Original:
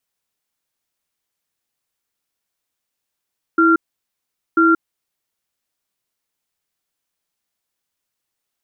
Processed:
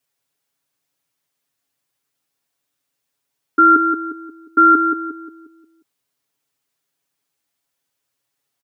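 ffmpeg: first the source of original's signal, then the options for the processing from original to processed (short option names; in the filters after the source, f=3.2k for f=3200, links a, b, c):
-f lavfi -i "aevalsrc='0.237*(sin(2*PI*328*t)+sin(2*PI*1380*t))*clip(min(mod(t,0.99),0.18-mod(t,0.99))/0.005,0,1)':d=1.51:s=44100"
-filter_complex "[0:a]highpass=66,aecho=1:1:7.2:0.91,asplit=2[a][b];[b]adelay=178,lowpass=f=1.1k:p=1,volume=-4dB,asplit=2[c][d];[d]adelay=178,lowpass=f=1.1k:p=1,volume=0.46,asplit=2[e][f];[f]adelay=178,lowpass=f=1.1k:p=1,volume=0.46,asplit=2[g][h];[h]adelay=178,lowpass=f=1.1k:p=1,volume=0.46,asplit=2[i][j];[j]adelay=178,lowpass=f=1.1k:p=1,volume=0.46,asplit=2[k][l];[l]adelay=178,lowpass=f=1.1k:p=1,volume=0.46[m];[c][e][g][i][k][m]amix=inputs=6:normalize=0[n];[a][n]amix=inputs=2:normalize=0"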